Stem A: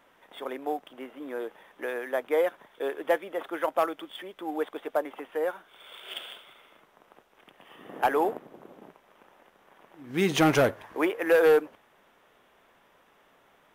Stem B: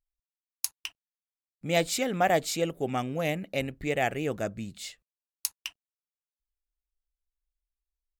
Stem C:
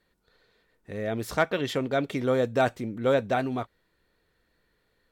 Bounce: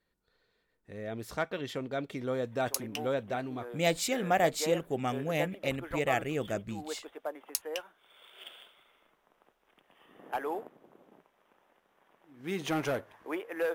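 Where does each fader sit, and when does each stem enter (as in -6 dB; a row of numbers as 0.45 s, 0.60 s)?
-10.0 dB, -2.5 dB, -8.5 dB; 2.30 s, 2.10 s, 0.00 s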